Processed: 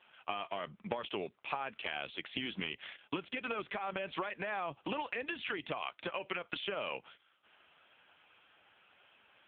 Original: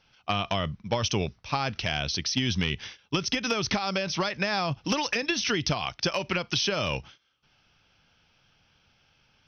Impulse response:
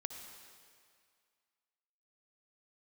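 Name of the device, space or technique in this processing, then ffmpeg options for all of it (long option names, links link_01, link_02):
voicemail: -af "highpass=350,lowpass=3100,acompressor=threshold=-41dB:ratio=10,volume=8dB" -ar 8000 -c:a libopencore_amrnb -b:a 5900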